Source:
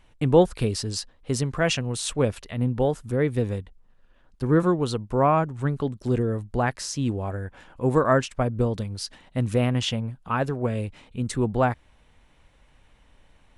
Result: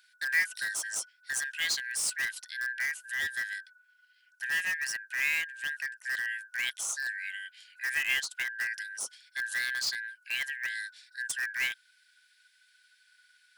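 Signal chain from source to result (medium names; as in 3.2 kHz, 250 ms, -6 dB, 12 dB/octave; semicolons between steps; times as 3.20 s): four frequency bands reordered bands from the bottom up 4123; differentiator; in parallel at -9 dB: integer overflow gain 28 dB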